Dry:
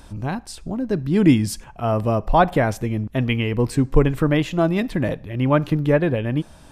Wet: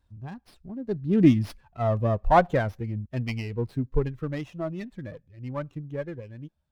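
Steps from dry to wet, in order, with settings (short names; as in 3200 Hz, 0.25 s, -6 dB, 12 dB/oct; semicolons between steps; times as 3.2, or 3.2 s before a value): per-bin expansion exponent 1.5; Doppler pass-by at 1.93, 9 m/s, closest 8.4 m; LPF 2600 Hz 6 dB/oct; running maximum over 5 samples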